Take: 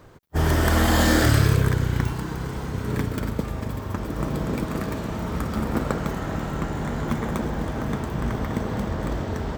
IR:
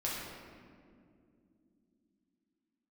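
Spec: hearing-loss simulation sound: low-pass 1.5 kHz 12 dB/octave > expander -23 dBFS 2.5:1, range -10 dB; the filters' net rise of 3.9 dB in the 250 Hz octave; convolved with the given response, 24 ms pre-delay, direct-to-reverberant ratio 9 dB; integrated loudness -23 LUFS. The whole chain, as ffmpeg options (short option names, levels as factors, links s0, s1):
-filter_complex "[0:a]equalizer=f=250:t=o:g=5,asplit=2[s0][s1];[1:a]atrim=start_sample=2205,adelay=24[s2];[s1][s2]afir=irnorm=-1:irlink=0,volume=0.211[s3];[s0][s3]amix=inputs=2:normalize=0,lowpass=1500,agate=range=0.316:threshold=0.0708:ratio=2.5"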